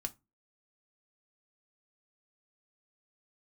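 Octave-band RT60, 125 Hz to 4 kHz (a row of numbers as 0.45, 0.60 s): 0.35, 0.35, 0.25, 0.20, 0.20, 0.15 s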